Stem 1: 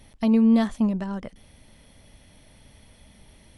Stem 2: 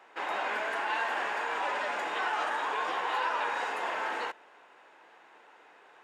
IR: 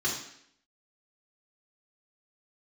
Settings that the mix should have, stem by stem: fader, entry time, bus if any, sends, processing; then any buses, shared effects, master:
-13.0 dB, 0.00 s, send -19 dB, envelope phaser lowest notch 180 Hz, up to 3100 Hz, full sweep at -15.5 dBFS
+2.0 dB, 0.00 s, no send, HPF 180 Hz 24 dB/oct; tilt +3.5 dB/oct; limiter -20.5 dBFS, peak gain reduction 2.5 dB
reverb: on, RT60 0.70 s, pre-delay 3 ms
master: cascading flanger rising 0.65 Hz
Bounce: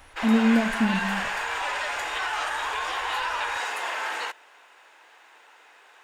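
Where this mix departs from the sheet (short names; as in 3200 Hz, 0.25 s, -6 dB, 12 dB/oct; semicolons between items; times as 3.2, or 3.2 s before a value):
stem 1 -13.0 dB -> -1.0 dB; master: missing cascading flanger rising 0.65 Hz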